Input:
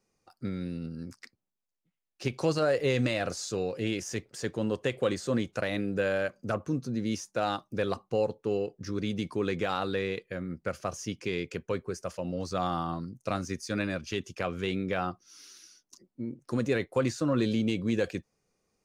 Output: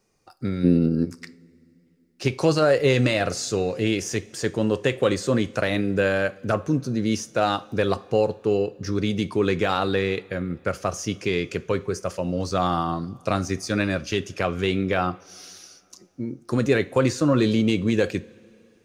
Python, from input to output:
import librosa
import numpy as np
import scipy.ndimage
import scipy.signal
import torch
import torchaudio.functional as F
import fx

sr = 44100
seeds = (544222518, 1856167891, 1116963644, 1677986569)

y = fx.peak_eq(x, sr, hz=310.0, db=14.0, octaves=2.6, at=(0.63, 1.04), fade=0.02)
y = fx.rev_double_slope(y, sr, seeds[0], early_s=0.35, late_s=2.9, knee_db=-19, drr_db=13.0)
y = y * librosa.db_to_amplitude(7.5)